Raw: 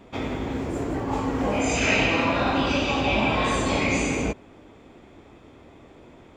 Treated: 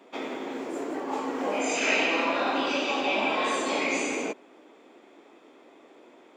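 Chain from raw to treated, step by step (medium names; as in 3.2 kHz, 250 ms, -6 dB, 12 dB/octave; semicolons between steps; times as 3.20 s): high-pass 280 Hz 24 dB/octave; trim -2.5 dB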